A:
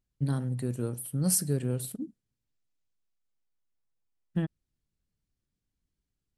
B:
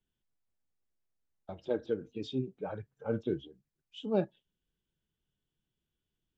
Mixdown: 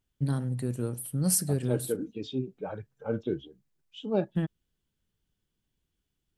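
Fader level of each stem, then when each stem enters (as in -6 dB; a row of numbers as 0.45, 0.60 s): +0.5, +2.0 dB; 0.00, 0.00 s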